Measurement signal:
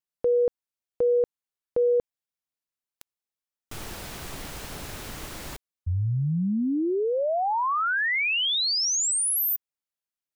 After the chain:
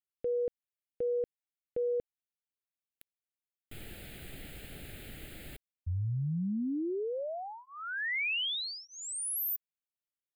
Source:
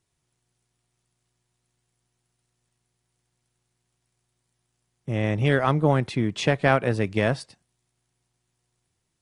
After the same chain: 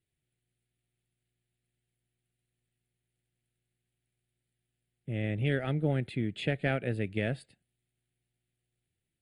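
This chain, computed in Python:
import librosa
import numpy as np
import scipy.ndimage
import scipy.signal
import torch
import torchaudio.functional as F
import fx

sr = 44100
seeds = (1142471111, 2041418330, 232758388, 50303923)

y = fx.fixed_phaser(x, sr, hz=2500.0, stages=4)
y = F.gain(torch.from_numpy(y), -7.0).numpy()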